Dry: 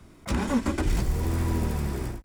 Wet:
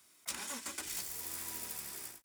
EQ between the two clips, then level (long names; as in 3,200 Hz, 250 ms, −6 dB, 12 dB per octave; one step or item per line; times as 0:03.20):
first difference
+2.0 dB